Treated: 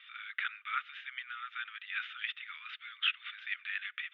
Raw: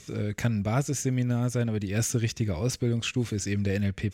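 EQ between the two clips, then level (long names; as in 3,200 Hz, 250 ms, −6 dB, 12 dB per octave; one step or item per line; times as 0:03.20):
Chebyshev band-pass filter 1,200–3,600 Hz, order 5
+3.0 dB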